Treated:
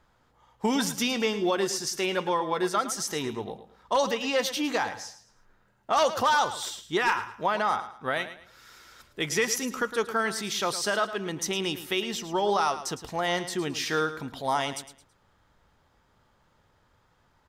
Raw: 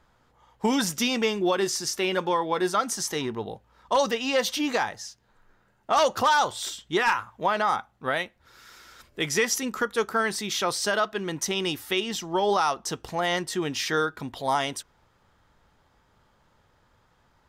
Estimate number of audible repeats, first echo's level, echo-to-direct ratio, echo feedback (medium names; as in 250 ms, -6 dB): 3, -12.5 dB, -12.0 dB, 31%